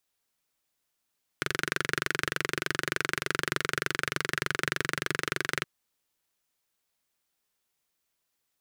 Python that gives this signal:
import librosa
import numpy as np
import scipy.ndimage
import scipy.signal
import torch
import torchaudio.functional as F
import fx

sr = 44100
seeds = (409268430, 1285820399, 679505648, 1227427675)

y = fx.engine_single(sr, seeds[0], length_s=4.22, rpm=2800, resonances_hz=(150.0, 370.0, 1500.0))